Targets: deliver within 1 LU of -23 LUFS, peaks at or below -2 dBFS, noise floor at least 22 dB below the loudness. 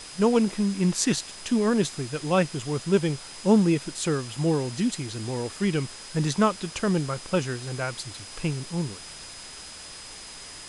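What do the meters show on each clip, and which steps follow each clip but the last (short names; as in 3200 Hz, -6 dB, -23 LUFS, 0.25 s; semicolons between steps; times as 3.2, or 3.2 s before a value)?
steady tone 5000 Hz; tone level -45 dBFS; noise floor -42 dBFS; noise floor target -48 dBFS; loudness -26.0 LUFS; peak -6.5 dBFS; loudness target -23.0 LUFS
-> notch 5000 Hz, Q 30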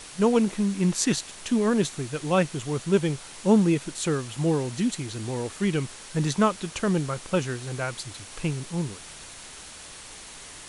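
steady tone none; noise floor -44 dBFS; noise floor target -48 dBFS
-> noise print and reduce 6 dB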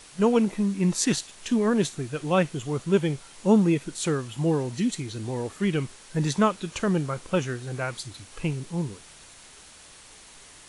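noise floor -49 dBFS; loudness -26.0 LUFS; peak -7.0 dBFS; loudness target -23.0 LUFS
-> gain +3 dB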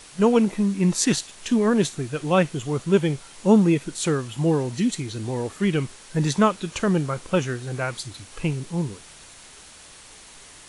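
loudness -23.0 LUFS; peak -4.0 dBFS; noise floor -46 dBFS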